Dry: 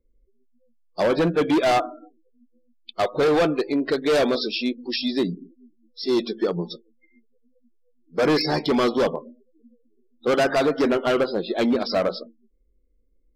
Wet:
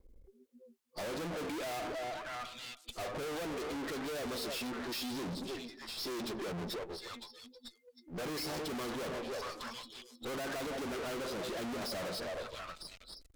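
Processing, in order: repeats whose band climbs or falls 317 ms, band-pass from 530 Hz, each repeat 1.4 oct, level -11 dB; half-wave rectifier; valve stage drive 39 dB, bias 0.35; trim +10.5 dB

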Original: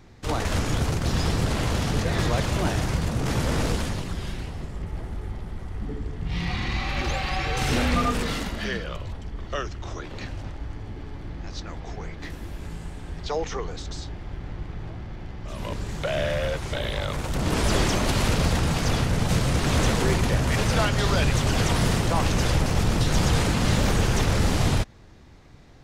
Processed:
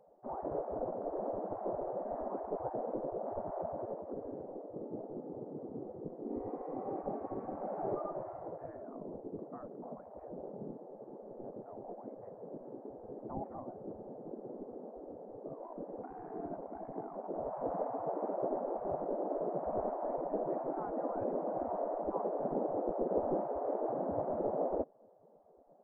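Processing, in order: inverse Chebyshev low-pass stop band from 3.2 kHz, stop band 80 dB; spectral gate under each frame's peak -20 dB weak; trim +7.5 dB

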